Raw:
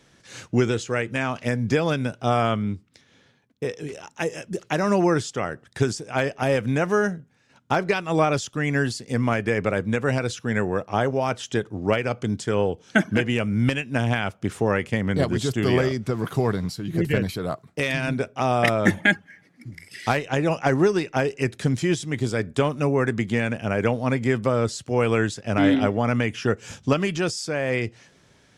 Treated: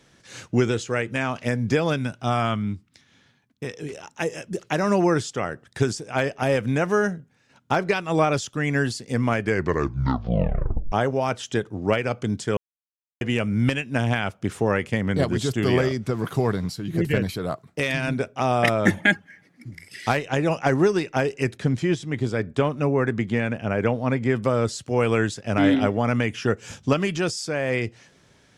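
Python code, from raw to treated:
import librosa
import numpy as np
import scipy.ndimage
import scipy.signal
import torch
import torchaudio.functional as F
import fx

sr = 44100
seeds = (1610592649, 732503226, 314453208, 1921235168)

y = fx.peak_eq(x, sr, hz=480.0, db=-8.0, octaves=0.77, at=(1.98, 3.74))
y = fx.lowpass(y, sr, hz=3000.0, slope=6, at=(21.57, 24.36))
y = fx.edit(y, sr, fx.tape_stop(start_s=9.43, length_s=1.49),
    fx.silence(start_s=12.57, length_s=0.64), tone=tone)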